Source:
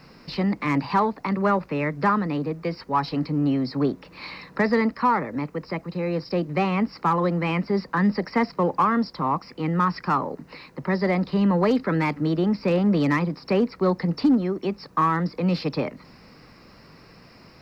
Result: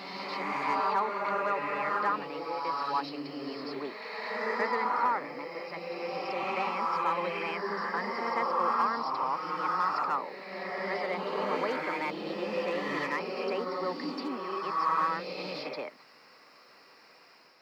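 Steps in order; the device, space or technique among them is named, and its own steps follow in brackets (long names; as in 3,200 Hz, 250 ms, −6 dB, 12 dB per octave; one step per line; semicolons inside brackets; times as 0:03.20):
ghost voice (reversed playback; convolution reverb RT60 2.3 s, pre-delay 76 ms, DRR −2.5 dB; reversed playback; high-pass filter 540 Hz 12 dB per octave)
level −7.5 dB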